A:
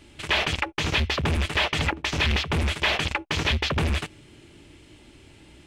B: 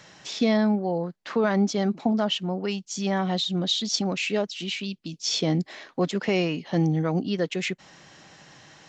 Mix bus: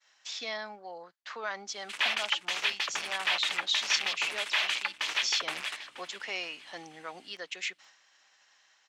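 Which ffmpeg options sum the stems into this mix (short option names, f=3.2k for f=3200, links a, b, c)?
-filter_complex "[0:a]aeval=exprs='val(0)+0.0178*(sin(2*PI*60*n/s)+sin(2*PI*2*60*n/s)/2+sin(2*PI*3*60*n/s)/3+sin(2*PI*4*60*n/s)/4+sin(2*PI*5*60*n/s)/5)':c=same,adelay=1700,volume=-4dB,asplit=2[a][b];[b]volume=-15.5dB[c];[1:a]volume=-4dB[d];[c]aecho=0:1:477|954|1431|1908|2385|2862:1|0.43|0.185|0.0795|0.0342|0.0147[e];[a][d][e]amix=inputs=3:normalize=0,agate=range=-33dB:threshold=-47dB:ratio=3:detection=peak,highpass=1.1k"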